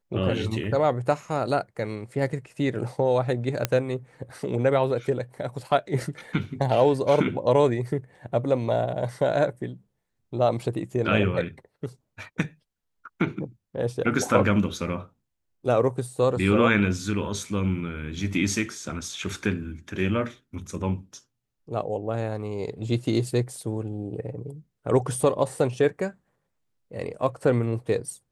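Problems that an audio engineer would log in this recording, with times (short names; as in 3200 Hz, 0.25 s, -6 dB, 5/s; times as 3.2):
3.65 pop -7 dBFS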